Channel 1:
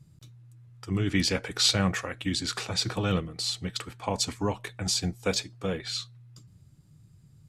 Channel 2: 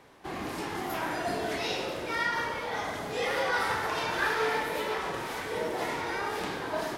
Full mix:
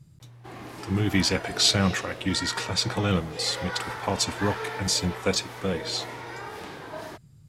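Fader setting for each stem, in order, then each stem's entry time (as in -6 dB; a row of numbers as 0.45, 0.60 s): +2.5, -5.5 dB; 0.00, 0.20 s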